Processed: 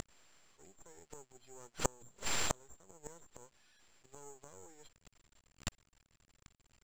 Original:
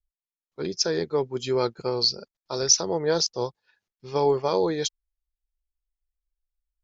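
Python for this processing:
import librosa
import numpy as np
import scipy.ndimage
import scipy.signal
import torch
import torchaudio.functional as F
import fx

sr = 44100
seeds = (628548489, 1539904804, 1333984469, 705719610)

y = x + 0.5 * 10.0 ** (-23.0 / 20.0) * np.diff(np.sign(x), prepend=np.sign(x[:1]))
y = fx.highpass(y, sr, hz=91.0, slope=6)
y = fx.rider(y, sr, range_db=4, speed_s=0.5)
y = fx.gate_flip(y, sr, shuts_db=-21.0, range_db=-36)
y = np.maximum(y, 0.0)
y = (np.kron(scipy.signal.resample_poly(y, 1, 6), np.eye(6)[0]) * 6)[:len(y)]
y = fx.air_absorb(y, sr, metres=110.0)
y = F.gain(torch.from_numpy(y), 8.0).numpy()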